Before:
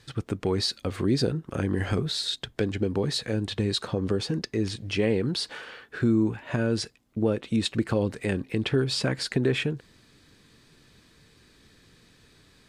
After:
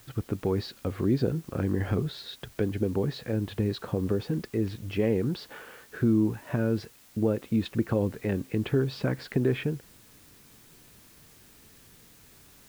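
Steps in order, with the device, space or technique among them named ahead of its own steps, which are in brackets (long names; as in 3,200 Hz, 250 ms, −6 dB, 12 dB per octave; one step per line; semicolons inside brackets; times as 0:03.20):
cassette deck with a dirty head (head-to-tape spacing loss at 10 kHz 31 dB; tape wow and flutter 28 cents; white noise bed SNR 27 dB)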